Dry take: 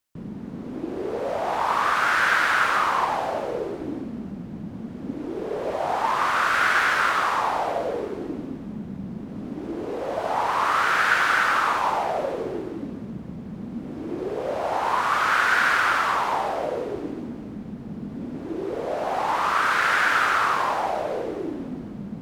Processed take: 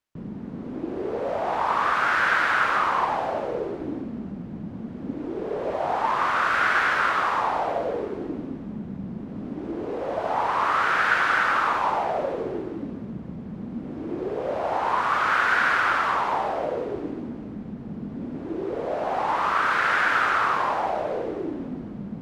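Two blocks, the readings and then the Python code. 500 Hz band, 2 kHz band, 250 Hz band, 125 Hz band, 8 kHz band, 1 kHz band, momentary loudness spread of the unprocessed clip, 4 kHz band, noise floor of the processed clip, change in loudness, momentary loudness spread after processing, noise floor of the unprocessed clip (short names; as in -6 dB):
0.0 dB, -1.0 dB, 0.0 dB, 0.0 dB, n/a, -0.5 dB, 16 LU, -3.5 dB, -37 dBFS, -1.0 dB, 15 LU, -37 dBFS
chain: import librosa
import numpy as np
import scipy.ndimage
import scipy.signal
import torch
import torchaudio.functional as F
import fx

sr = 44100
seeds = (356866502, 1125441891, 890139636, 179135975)

y = fx.lowpass(x, sr, hz=2900.0, slope=6)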